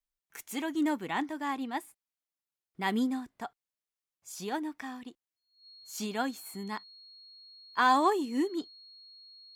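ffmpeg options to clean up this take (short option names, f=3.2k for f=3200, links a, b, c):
-af "bandreject=f=4.3k:w=30"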